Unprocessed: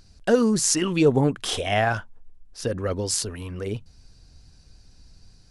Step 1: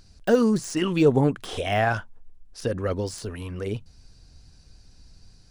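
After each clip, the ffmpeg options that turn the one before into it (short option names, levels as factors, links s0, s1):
-af "deesser=0.8"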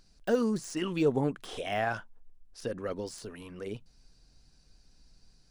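-af "equalizer=f=84:t=o:w=0.7:g=-14.5,volume=0.422"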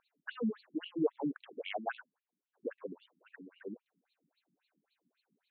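-af "afftfilt=real='re*between(b*sr/1024,220*pow(3200/220,0.5+0.5*sin(2*PI*3.7*pts/sr))/1.41,220*pow(3200/220,0.5+0.5*sin(2*PI*3.7*pts/sr))*1.41)':imag='im*between(b*sr/1024,220*pow(3200/220,0.5+0.5*sin(2*PI*3.7*pts/sr))/1.41,220*pow(3200/220,0.5+0.5*sin(2*PI*3.7*pts/sr))*1.41)':win_size=1024:overlap=0.75,volume=0.891"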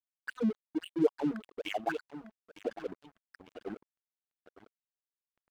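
-filter_complex "[0:a]asplit=2[s0][s1];[s1]adelay=902,lowpass=f=3500:p=1,volume=0.282,asplit=2[s2][s3];[s3]adelay=902,lowpass=f=3500:p=1,volume=0.5,asplit=2[s4][s5];[s5]adelay=902,lowpass=f=3500:p=1,volume=0.5,asplit=2[s6][s7];[s7]adelay=902,lowpass=f=3500:p=1,volume=0.5,asplit=2[s8][s9];[s9]adelay=902,lowpass=f=3500:p=1,volume=0.5[s10];[s0][s2][s4][s6][s8][s10]amix=inputs=6:normalize=0,aeval=exprs='sgn(val(0))*max(abs(val(0))-0.00335,0)':c=same,volume=1.78"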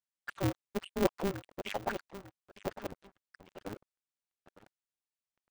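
-af "aresample=22050,aresample=44100,aeval=exprs='val(0)*sgn(sin(2*PI*100*n/s))':c=same,volume=0.794"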